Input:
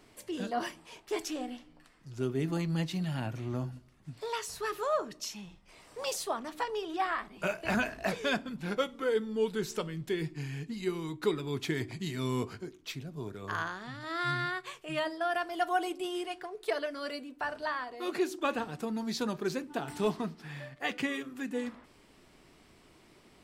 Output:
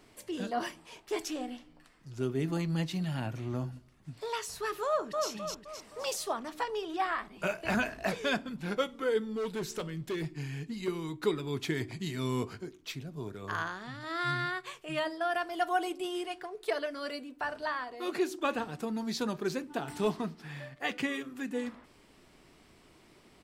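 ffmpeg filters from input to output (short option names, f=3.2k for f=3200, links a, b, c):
-filter_complex "[0:a]asplit=2[a][b];[b]afade=t=in:st=4.87:d=0.01,afade=t=out:st=5.28:d=0.01,aecho=0:1:260|520|780|1040|1300|1560:0.749894|0.337452|0.151854|0.0683341|0.0307503|0.0138377[c];[a][c]amix=inputs=2:normalize=0,asettb=1/sr,asplit=3[d][e][f];[d]atrim=end=9.304[g];[e]atrim=start=9.3:end=10.88,asetpts=PTS-STARTPTS,afade=t=in:d=0.004:c=qsin,afade=t=out:st=1.576:d=0.004:c=qsin,asoftclip=type=hard:threshold=-30.5dB[h];[f]atrim=start=10.876[i];[g][h]acrossfade=d=0.004:c1=hsin:c2=qsin[j];[j][i]acrossfade=d=0.004:c1=qsin:c2=hsin"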